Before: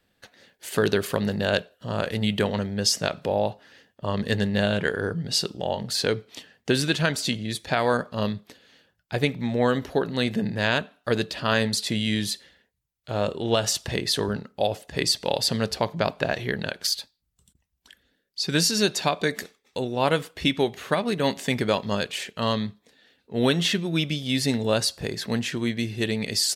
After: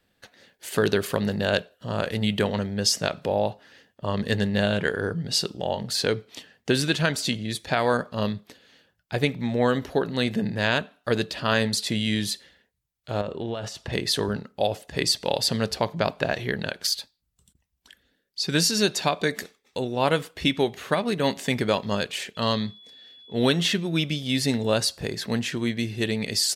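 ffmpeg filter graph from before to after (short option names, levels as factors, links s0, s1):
-filter_complex "[0:a]asettb=1/sr,asplit=3[s0][s1][s2];[s0]atrim=end=13.214[s3];[s1]atrim=start=13.21:end=13.93,asetpts=PTS-STARTPTS,afade=t=in:d=0.004:c=qsin,afade=t=out:st=0.716:d=0.004:c=qsin,acompressor=threshold=0.0562:ratio=10:attack=3.2:release=140:knee=1:detection=peak,lowpass=f=2300:p=1[s4];[s2]atrim=start=13.926[s5];[s3][s4]acrossfade=d=0.004:c1=hsin:c2=qsin[s6];[s6][s5]acrossfade=d=0.004:c1=qsin:c2=hsin,asettb=1/sr,asplit=3[s7][s8][s9];[s7]atrim=end=22.354[s10];[s8]atrim=start=22.35:end=23.52,asetpts=PTS-STARTPTS,afade=t=in:d=0.004:c=qsin,afade=t=out:st=1.166:d=0.004:c=qsin,equalizer=f=4600:t=o:w=0.46:g=6.5,aeval=exprs='val(0)+0.00447*sin(2*PI*3400*n/s)':c=same[s11];[s9]atrim=start=23.516[s12];[s10][s11]acrossfade=d=0.004:c1=hsin:c2=qsin[s13];[s13][s12]acrossfade=d=0.004:c1=qsin:c2=hsin"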